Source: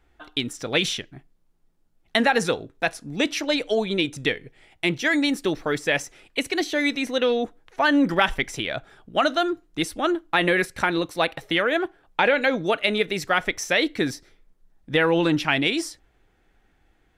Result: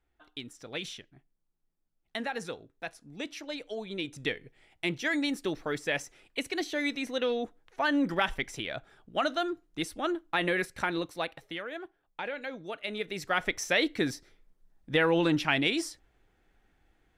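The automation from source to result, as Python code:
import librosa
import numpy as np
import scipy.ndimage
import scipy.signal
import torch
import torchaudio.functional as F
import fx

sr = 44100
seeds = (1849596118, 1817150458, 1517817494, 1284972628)

y = fx.gain(x, sr, db=fx.line((3.78, -15.0), (4.29, -8.0), (11.02, -8.0), (11.64, -17.0), (12.66, -17.0), (13.48, -5.0)))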